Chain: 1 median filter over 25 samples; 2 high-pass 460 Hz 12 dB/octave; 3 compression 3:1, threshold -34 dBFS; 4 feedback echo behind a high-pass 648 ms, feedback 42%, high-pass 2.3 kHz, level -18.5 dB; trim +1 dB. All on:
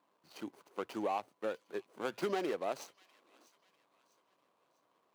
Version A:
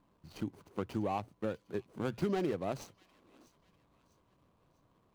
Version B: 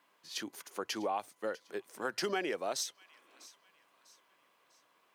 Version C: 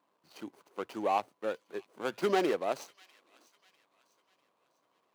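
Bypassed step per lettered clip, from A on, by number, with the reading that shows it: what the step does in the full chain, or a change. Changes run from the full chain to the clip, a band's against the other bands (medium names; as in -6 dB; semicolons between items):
2, 125 Hz band +16.5 dB; 1, 8 kHz band +13.5 dB; 3, momentary loudness spread change +6 LU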